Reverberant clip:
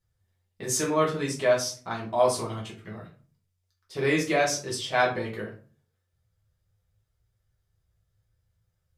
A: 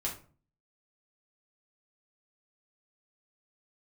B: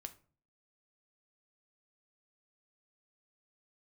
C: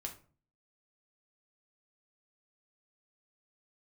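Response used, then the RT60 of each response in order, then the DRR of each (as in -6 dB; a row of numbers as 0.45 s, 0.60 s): A; 0.40 s, 0.40 s, 0.40 s; -4.5 dB, 7.5 dB, 1.5 dB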